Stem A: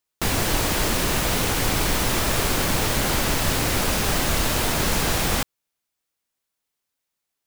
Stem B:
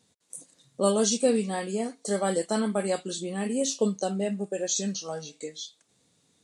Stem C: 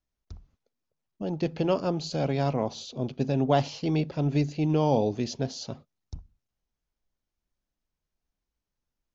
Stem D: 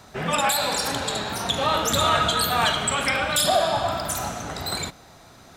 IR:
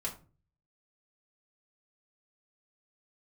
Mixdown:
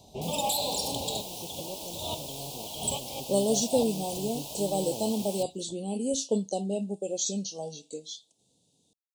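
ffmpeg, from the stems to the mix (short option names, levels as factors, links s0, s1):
-filter_complex "[0:a]highpass=550,volume=0.188[s0];[1:a]adelay=2500,volume=0.794[s1];[2:a]lowpass=5400,aeval=exprs='sgn(val(0))*max(abs(val(0))-0.0133,0)':c=same,volume=0.178,asplit=2[s2][s3];[3:a]volume=0.562[s4];[s3]apad=whole_len=245624[s5];[s4][s5]sidechaincompress=threshold=0.00141:ratio=8:attack=7.9:release=145[s6];[s0][s1][s2][s6]amix=inputs=4:normalize=0,asuperstop=centerf=1600:order=8:qfactor=0.81"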